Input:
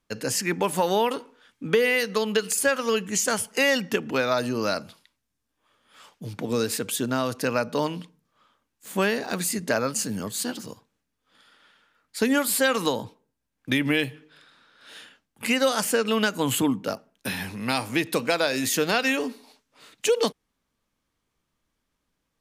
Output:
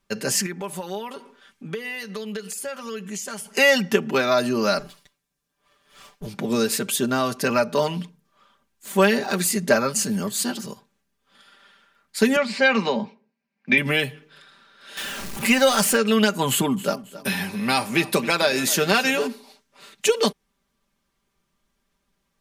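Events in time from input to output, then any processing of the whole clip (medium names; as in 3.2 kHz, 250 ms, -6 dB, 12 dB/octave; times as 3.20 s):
0.46–3.46 s: compression 2:1, threshold -43 dBFS
4.79–6.27 s: comb filter that takes the minimum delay 6.8 ms
7.50–9.82 s: phaser 1.8 Hz, delay 3.4 ms, feedback 28%
12.36–13.78 s: cabinet simulation 210–4700 Hz, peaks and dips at 220 Hz +10 dB, 320 Hz -8 dB, 1.3 kHz -5 dB, 2.3 kHz +9 dB, 3.4 kHz -9 dB
14.97–15.97 s: jump at every zero crossing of -31 dBFS
16.49–19.27 s: feedback delay 272 ms, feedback 34%, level -17 dB
whole clip: comb 5.1 ms, depth 71%; trim +2.5 dB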